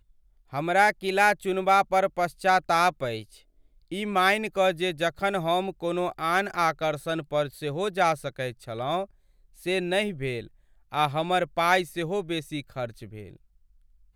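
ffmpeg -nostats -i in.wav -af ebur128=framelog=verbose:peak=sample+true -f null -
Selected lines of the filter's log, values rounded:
Integrated loudness:
  I:         -25.9 LUFS
  Threshold: -36.7 LUFS
Loudness range:
  LRA:         5.3 LU
  Threshold: -46.7 LUFS
  LRA low:   -29.2 LUFS
  LRA high:  -23.9 LUFS
Sample peak:
  Peak:       -8.1 dBFS
True peak:
  Peak:       -8.0 dBFS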